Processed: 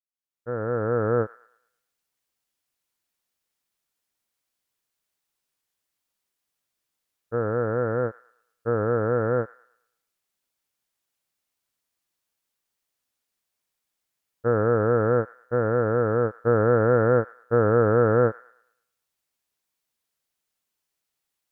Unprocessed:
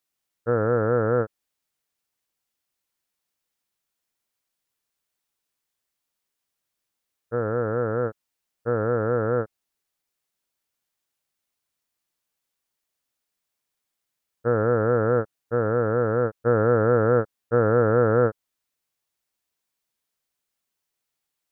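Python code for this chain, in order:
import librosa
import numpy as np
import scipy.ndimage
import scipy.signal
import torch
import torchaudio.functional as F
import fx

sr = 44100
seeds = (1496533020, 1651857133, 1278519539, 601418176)

y = fx.fade_in_head(x, sr, length_s=1.23)
y = fx.echo_wet_highpass(y, sr, ms=110, feedback_pct=38, hz=1700.0, wet_db=-11)
y = fx.vibrato(y, sr, rate_hz=0.66, depth_cents=31.0)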